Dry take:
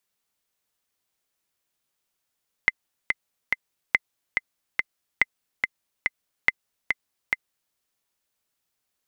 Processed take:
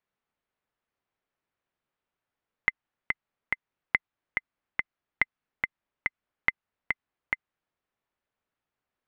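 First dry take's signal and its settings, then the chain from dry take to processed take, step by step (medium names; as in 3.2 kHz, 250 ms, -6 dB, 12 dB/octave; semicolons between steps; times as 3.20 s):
metronome 142 bpm, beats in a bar 3, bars 4, 2.06 kHz, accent 4.5 dB -4 dBFS
low-pass 2 kHz 12 dB/octave; dynamic bell 480 Hz, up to -6 dB, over -54 dBFS, Q 1.2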